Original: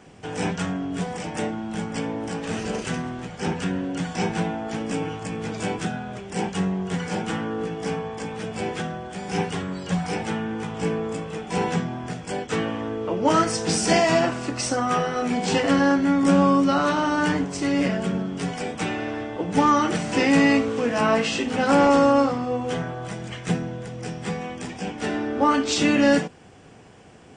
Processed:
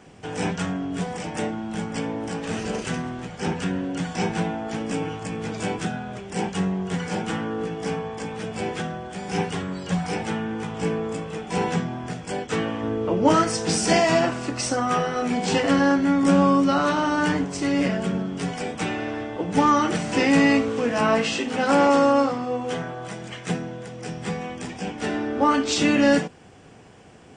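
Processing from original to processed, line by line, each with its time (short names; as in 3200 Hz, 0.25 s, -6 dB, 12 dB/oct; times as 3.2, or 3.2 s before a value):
12.83–13.34 low shelf 410 Hz +5.5 dB
21.34–24.09 HPF 180 Hz 6 dB/oct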